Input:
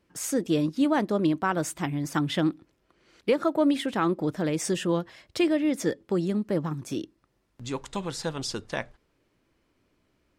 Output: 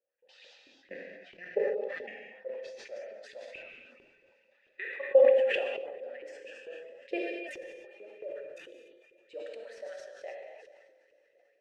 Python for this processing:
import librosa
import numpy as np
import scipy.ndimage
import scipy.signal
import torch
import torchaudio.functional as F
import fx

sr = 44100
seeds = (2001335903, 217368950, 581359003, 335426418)

y = fx.speed_glide(x, sr, from_pct=54, to_pct=125)
y = fx.level_steps(y, sr, step_db=21)
y = fx.echo_diffused(y, sr, ms=484, feedback_pct=56, wet_db=-16)
y = fx.dereverb_blind(y, sr, rt60_s=0.78)
y = fx.vowel_filter(y, sr, vowel='e')
y = fx.filter_lfo_highpass(y, sr, shape='saw_up', hz=4.5, low_hz=400.0, high_hz=2700.0, q=4.0)
y = fx.low_shelf(y, sr, hz=410.0, db=7.5)
y = fx.rev_gated(y, sr, seeds[0], gate_ms=320, shape='flat', drr_db=0.5)
y = fx.sustainer(y, sr, db_per_s=34.0)